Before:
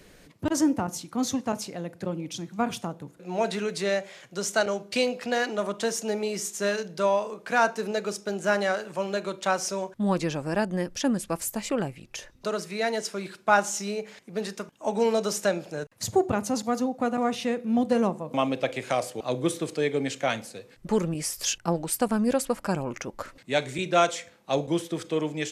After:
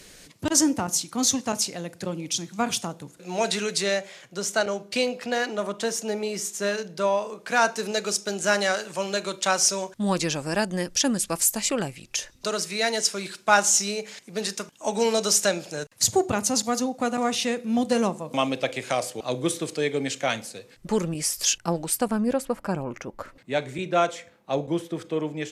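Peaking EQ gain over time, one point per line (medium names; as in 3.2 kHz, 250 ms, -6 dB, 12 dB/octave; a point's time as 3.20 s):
peaking EQ 7.1 kHz 2.7 oct
3.69 s +12.5 dB
4.23 s +2 dB
7.12 s +2 dB
7.95 s +12 dB
18.23 s +12 dB
18.75 s +5.5 dB
21.84 s +5.5 dB
22.35 s -6 dB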